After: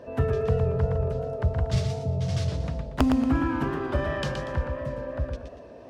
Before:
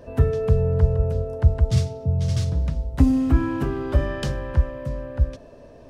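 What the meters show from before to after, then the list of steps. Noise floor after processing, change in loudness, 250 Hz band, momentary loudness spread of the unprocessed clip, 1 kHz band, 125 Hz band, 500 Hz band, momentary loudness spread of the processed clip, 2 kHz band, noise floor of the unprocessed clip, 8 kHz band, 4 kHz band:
-45 dBFS, -4.5 dB, -3.0 dB, 8 LU, +2.5 dB, -6.0 dB, -1.5 dB, 9 LU, +1.5 dB, -46 dBFS, no reading, 0.0 dB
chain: high-pass 230 Hz 6 dB/octave; dynamic bell 350 Hz, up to -5 dB, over -38 dBFS, Q 1.3; integer overflow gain 11.5 dB; treble shelf 5.8 kHz -11.5 dB; modulated delay 117 ms, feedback 33%, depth 153 cents, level -6 dB; trim +1.5 dB

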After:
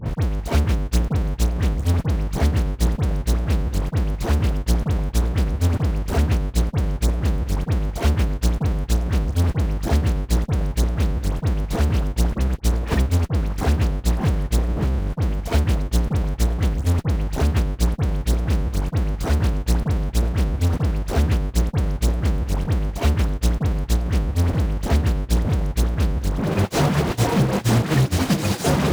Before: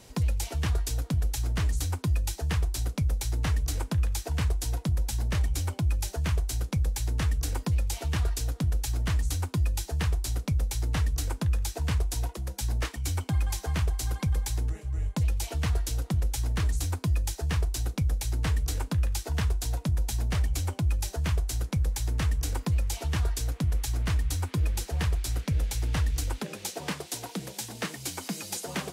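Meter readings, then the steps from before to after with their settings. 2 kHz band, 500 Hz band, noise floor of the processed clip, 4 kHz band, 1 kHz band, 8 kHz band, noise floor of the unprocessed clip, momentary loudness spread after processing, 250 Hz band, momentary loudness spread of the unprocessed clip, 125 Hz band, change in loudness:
+6.5 dB, +13.5 dB, -34 dBFS, +4.5 dB, +10.0 dB, +1.0 dB, -47 dBFS, 4 LU, +12.5 dB, 4 LU, +8.0 dB, +7.5 dB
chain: Schmitt trigger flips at -46.5 dBFS; phase dispersion highs, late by 61 ms, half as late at 1.8 kHz; on a send: repeats whose band climbs or falls 490 ms, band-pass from 210 Hz, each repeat 1.4 oct, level -8.5 dB; on the sum: gate -26 dBFS, range -42 dB; high-pass 63 Hz; upward compressor, threshold -48 dBFS; tilt EQ -2.5 dB/octave; trim +7.5 dB

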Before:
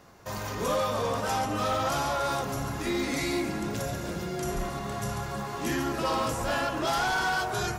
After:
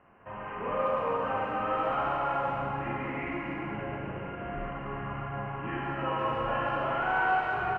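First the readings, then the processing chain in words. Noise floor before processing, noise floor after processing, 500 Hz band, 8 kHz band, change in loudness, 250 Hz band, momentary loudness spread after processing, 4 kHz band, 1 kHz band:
-36 dBFS, -40 dBFS, -2.0 dB, under -35 dB, -2.0 dB, -5.5 dB, 9 LU, -12.0 dB, +0.5 dB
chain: Chebyshev low-pass 3 kHz, order 8; peaking EQ 1.1 kHz +5.5 dB 1.2 oct; speakerphone echo 140 ms, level -18 dB; Schroeder reverb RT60 2.8 s, combs from 32 ms, DRR -3 dB; trim -8.5 dB

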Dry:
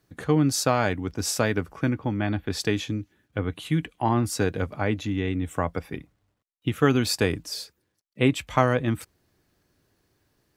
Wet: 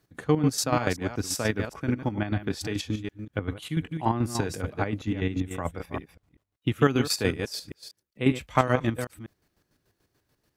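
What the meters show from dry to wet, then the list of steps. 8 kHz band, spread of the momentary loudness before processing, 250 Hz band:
-2.5 dB, 11 LU, -2.0 dB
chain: chunks repeated in reverse 193 ms, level -8 dB; square tremolo 6.9 Hz, depth 60%, duty 40%

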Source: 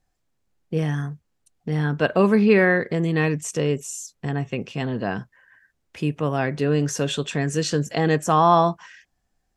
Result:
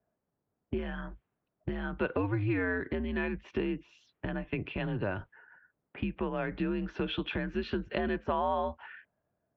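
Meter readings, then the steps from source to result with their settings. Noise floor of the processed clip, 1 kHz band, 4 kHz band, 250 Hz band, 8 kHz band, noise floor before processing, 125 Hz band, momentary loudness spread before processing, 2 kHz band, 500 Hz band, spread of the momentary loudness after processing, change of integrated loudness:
-85 dBFS, -14.0 dB, -11.0 dB, -10.5 dB, under -40 dB, -73 dBFS, -13.5 dB, 13 LU, -10.5 dB, -12.5 dB, 12 LU, -12.0 dB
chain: compression 6:1, threshold -29 dBFS, peak gain reduction 16.5 dB; level-controlled noise filter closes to 1 kHz, open at -28 dBFS; mistuned SSB -100 Hz 200–3500 Hz; trim +1.5 dB

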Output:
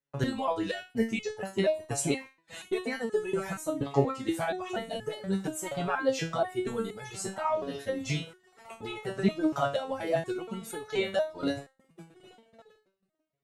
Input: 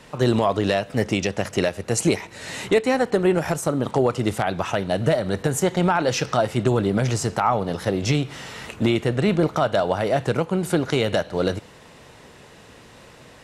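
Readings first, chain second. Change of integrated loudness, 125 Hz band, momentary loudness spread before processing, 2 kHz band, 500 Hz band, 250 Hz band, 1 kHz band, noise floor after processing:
-9.5 dB, -13.0 dB, 5 LU, -9.0 dB, -9.0 dB, -9.5 dB, -9.5 dB, -76 dBFS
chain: dynamic bell 5.3 kHz, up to -6 dB, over -48 dBFS, Q 3.5; on a send: echo that smears into a reverb 1395 ms, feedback 58%, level -13 dB; on the sum: reverb removal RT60 1.7 s; gate -34 dBFS, range -40 dB; resonator arpeggio 4.2 Hz 140–430 Hz; trim +5.5 dB

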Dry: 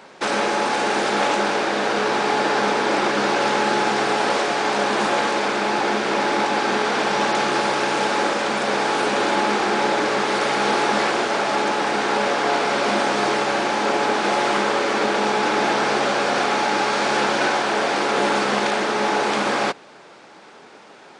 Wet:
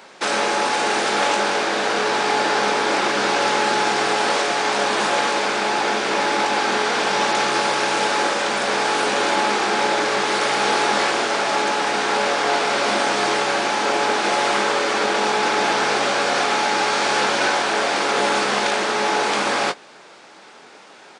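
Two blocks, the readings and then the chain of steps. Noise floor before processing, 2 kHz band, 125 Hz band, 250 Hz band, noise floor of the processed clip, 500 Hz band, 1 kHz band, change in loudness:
-45 dBFS, +1.5 dB, -3.0 dB, -3.0 dB, -45 dBFS, -0.5 dB, +0.5 dB, +1.0 dB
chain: tilt EQ +1.5 dB/octave; doubling 21 ms -11 dB

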